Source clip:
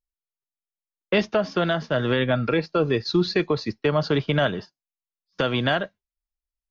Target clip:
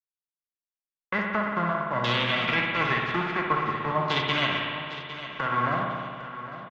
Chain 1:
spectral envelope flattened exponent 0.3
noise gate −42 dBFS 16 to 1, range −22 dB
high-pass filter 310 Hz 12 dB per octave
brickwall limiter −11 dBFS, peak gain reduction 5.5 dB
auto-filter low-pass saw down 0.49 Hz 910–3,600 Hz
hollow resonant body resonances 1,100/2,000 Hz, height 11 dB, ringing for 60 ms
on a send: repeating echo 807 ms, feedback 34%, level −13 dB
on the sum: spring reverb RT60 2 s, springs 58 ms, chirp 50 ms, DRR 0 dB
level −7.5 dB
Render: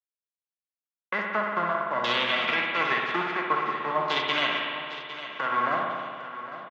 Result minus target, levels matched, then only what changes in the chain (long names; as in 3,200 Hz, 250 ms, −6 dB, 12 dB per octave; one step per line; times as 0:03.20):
250 Hz band −5.0 dB
remove: high-pass filter 310 Hz 12 dB per octave